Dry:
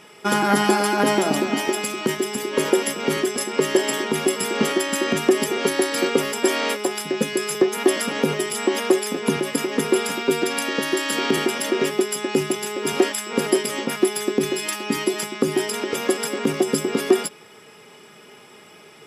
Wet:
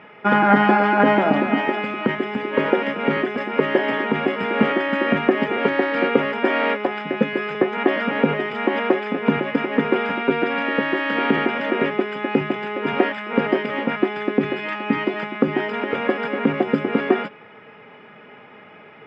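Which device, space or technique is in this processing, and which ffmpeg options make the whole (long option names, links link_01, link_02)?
bass cabinet: -af "highpass=86,equalizer=frequency=160:width_type=q:width=4:gain=-4,equalizer=frequency=370:width_type=q:width=4:gain=-9,equalizer=frequency=1100:width_type=q:width=4:gain=-3,lowpass=frequency=2300:width=0.5412,lowpass=frequency=2300:width=1.3066,volume=5.5dB"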